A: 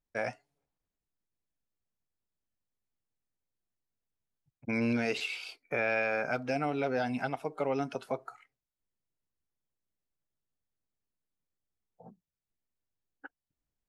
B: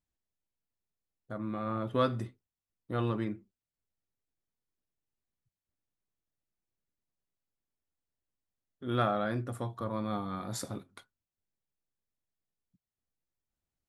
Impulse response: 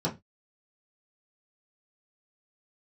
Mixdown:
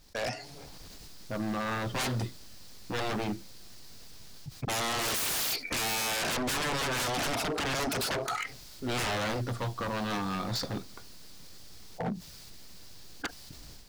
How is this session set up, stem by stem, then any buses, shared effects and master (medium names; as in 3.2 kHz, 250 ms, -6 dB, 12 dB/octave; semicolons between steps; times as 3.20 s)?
-2.5 dB, 0.00 s, no send, bass shelf 320 Hz +2.5 dB; level flattener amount 50%
-5.0 dB, 0.00 s, no send, level-controlled noise filter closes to 650 Hz, open at -29 dBFS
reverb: none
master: peaking EQ 4.7 kHz +12 dB 0.84 oct; level rider gain up to 11 dB; wavefolder -26 dBFS